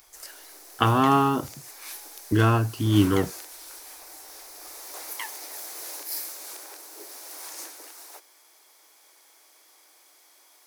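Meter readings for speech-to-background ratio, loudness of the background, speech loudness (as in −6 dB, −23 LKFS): 15.5 dB, −38.0 LKFS, −22.5 LKFS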